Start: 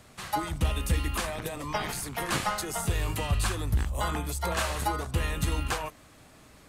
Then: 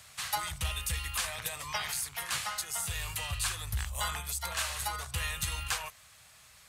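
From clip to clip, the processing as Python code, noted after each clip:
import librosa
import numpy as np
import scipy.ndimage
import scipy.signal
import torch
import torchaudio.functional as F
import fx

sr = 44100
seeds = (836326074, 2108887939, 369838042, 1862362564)

y = scipy.signal.sosfilt(scipy.signal.butter(2, 75.0, 'highpass', fs=sr, output='sos'), x)
y = fx.tone_stack(y, sr, knobs='10-0-10')
y = fx.rider(y, sr, range_db=10, speed_s=0.5)
y = y * 10.0 ** (3.0 / 20.0)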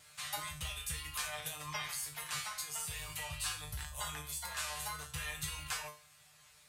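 y = fx.wow_flutter(x, sr, seeds[0], rate_hz=2.1, depth_cents=29.0)
y = fx.comb_fb(y, sr, f0_hz=150.0, decay_s=0.35, harmonics='all', damping=0.0, mix_pct=90)
y = y * 10.0 ** (5.5 / 20.0)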